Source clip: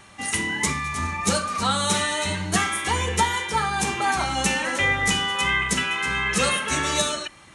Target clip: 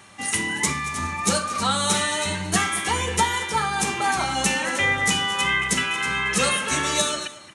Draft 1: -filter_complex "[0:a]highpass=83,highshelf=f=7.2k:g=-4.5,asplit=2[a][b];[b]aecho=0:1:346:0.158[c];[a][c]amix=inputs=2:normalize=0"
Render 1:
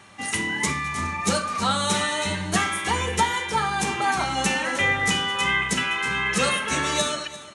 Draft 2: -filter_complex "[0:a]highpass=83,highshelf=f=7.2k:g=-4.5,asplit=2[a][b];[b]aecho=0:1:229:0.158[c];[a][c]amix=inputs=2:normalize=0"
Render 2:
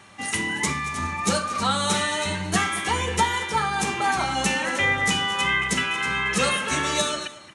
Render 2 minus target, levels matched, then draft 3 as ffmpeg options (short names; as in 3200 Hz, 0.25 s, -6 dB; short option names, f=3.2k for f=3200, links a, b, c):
8000 Hz band -3.0 dB
-filter_complex "[0:a]highpass=83,highshelf=f=7.2k:g=3.5,asplit=2[a][b];[b]aecho=0:1:229:0.158[c];[a][c]amix=inputs=2:normalize=0"